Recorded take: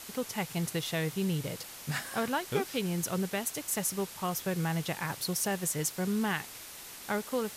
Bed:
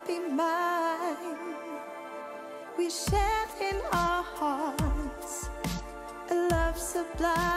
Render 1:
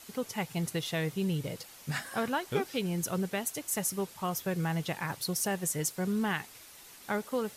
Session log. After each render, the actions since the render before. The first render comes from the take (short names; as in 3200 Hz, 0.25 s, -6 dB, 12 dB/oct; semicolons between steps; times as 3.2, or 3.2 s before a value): denoiser 7 dB, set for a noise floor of -46 dBFS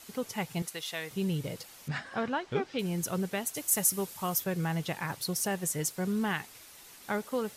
0.62–1.11 HPF 1000 Hz 6 dB/oct; 1.88–2.79 air absorption 130 m; 3.56–4.44 high shelf 7000 Hz +9.5 dB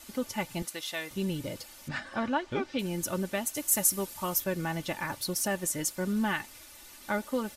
low shelf 80 Hz +9.5 dB; comb 3.4 ms, depth 59%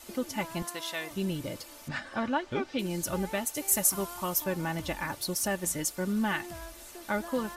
add bed -16.5 dB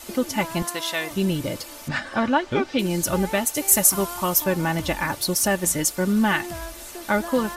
gain +9 dB; limiter -3 dBFS, peak gain reduction 1 dB